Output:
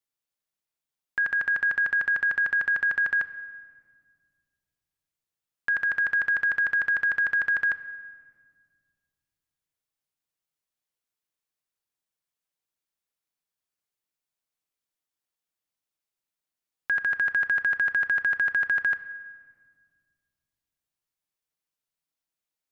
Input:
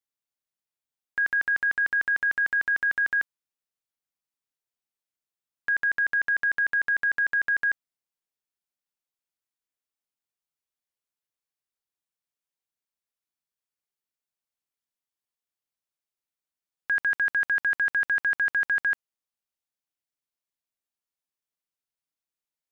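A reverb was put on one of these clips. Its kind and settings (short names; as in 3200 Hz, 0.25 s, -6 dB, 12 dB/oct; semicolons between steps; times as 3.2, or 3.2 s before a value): shoebox room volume 3000 m³, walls mixed, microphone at 0.56 m; gain +1.5 dB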